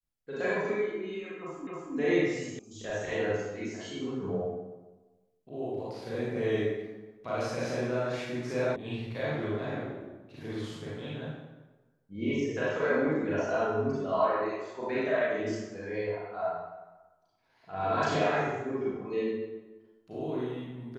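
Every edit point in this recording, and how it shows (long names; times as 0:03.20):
0:01.67: the same again, the last 0.27 s
0:02.59: cut off before it has died away
0:08.76: cut off before it has died away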